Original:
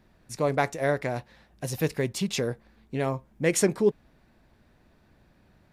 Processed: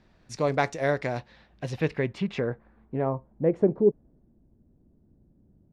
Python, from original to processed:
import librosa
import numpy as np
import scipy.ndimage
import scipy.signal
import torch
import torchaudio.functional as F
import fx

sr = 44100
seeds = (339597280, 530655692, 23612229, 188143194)

y = fx.filter_sweep_lowpass(x, sr, from_hz=5500.0, to_hz=310.0, start_s=1.11, end_s=4.38, q=1.1)